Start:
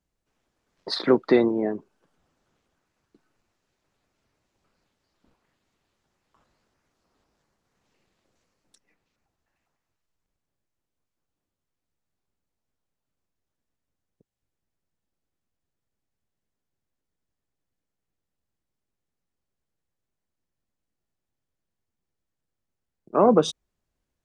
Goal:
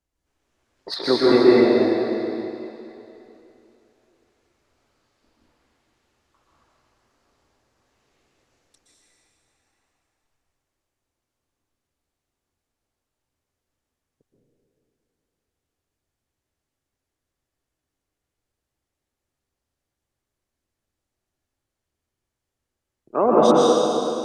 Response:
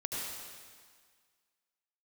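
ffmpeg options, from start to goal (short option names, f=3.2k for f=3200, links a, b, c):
-filter_complex "[0:a]equalizer=f=180:w=3:g=-10,acrossover=split=3800[a][b];[b]aeval=exprs='clip(val(0),-1,0.0531)':c=same[c];[a][c]amix=inputs=2:normalize=0[d];[1:a]atrim=start_sample=2205,asetrate=26901,aresample=44100[e];[d][e]afir=irnorm=-1:irlink=0,volume=-1dB"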